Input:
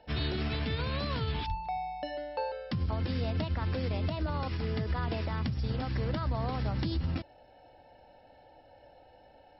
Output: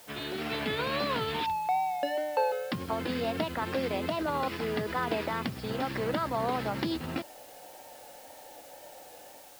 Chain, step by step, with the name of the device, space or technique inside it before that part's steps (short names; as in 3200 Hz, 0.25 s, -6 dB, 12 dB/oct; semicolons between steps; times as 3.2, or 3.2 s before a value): dictaphone (BPF 280–3700 Hz; AGC gain up to 7 dB; wow and flutter; white noise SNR 21 dB)